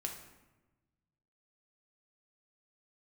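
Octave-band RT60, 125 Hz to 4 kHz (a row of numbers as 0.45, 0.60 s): 1.9, 1.5, 1.2, 1.1, 0.95, 0.70 s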